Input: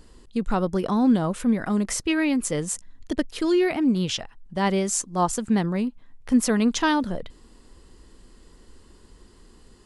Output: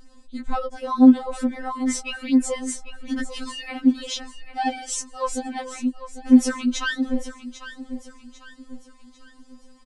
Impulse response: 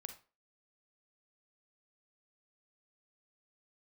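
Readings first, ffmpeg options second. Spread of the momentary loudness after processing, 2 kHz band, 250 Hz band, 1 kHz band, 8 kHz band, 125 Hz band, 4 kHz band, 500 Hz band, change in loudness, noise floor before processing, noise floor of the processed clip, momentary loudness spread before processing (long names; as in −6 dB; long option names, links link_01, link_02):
20 LU, −0.5 dB, +2.5 dB, −1.0 dB, −2.0 dB, below −15 dB, −0.5 dB, −5.5 dB, +1.0 dB, −52 dBFS, −51 dBFS, 10 LU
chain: -af "lowpass=frequency=9100:width=0.5412,lowpass=frequency=9100:width=1.3066,aecho=1:1:797|1594|2391|3188:0.224|0.0918|0.0376|0.0154,afftfilt=real='re*3.46*eq(mod(b,12),0)':imag='im*3.46*eq(mod(b,12),0)':win_size=2048:overlap=0.75,volume=1dB"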